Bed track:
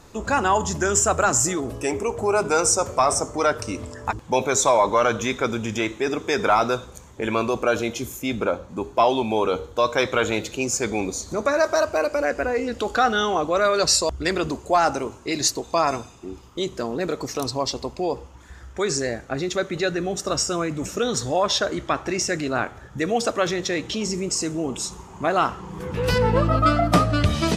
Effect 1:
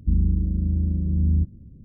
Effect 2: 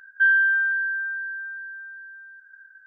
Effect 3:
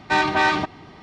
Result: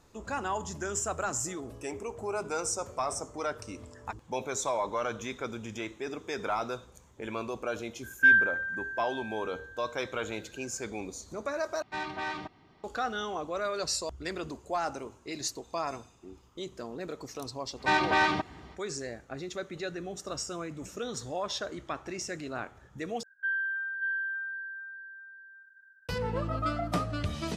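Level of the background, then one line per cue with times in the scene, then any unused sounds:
bed track −13 dB
0:08.03: mix in 2 −0.5 dB + reverb reduction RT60 1.7 s
0:11.82: overwrite with 3 −16.5 dB
0:17.76: mix in 3 −6 dB, fades 0.05 s + high-pass filter 46 Hz
0:23.23: overwrite with 2 −13 dB + single-tap delay 584 ms −5.5 dB
not used: 1

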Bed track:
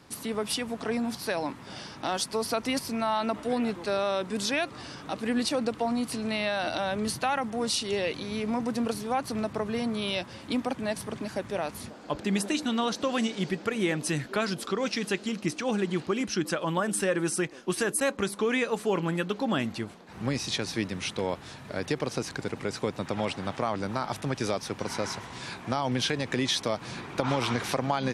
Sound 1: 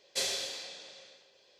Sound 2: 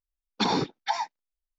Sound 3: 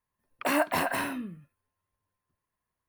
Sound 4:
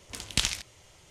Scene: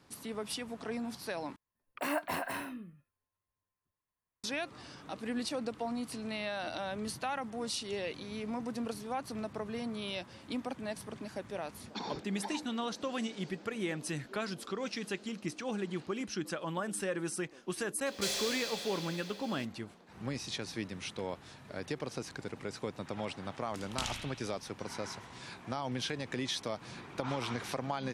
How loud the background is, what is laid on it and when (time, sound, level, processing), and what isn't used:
bed track −8.5 dB
0:01.56: overwrite with 3 −8 dB
0:11.55: mix in 2 −15.5 dB
0:18.06: mix in 1 −8 dB + power curve on the samples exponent 0.5
0:23.61: mix in 4 −12.5 dB + spring reverb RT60 1 s, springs 34 ms, DRR −2 dB

